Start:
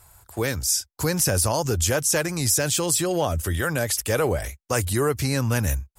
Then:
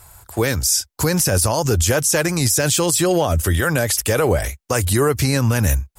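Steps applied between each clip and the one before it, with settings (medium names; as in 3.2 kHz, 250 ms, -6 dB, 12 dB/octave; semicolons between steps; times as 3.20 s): peak limiter -15 dBFS, peak gain reduction 7 dB; trim +7.5 dB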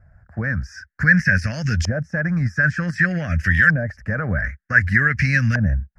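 FFT filter 110 Hz 0 dB, 200 Hz +6 dB, 380 Hz -20 dB, 610 Hz -10 dB, 950 Hz -24 dB, 1.7 kHz +14 dB, 3.5 kHz -18 dB, 5.3 kHz +7 dB, 8.2 kHz -6 dB, 12 kHz -1 dB; LFO low-pass saw up 0.54 Hz 630–3500 Hz; trim -2 dB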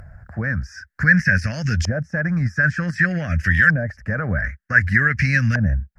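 upward compressor, threshold -31 dBFS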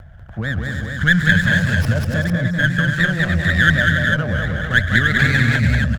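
vibrato 2.4 Hz 29 cents; multi-tap echo 137/194/287/393/449 ms -15.5/-3/-7.5/-10/-5.5 dB; sliding maximum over 5 samples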